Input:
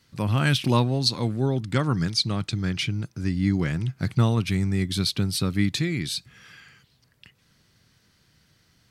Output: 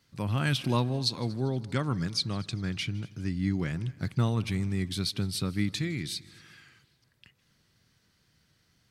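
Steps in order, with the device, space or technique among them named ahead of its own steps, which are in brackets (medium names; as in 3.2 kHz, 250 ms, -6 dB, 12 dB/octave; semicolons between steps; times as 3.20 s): multi-head tape echo (multi-head delay 79 ms, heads second and third, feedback 47%, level -23.5 dB; wow and flutter 24 cents); trim -6 dB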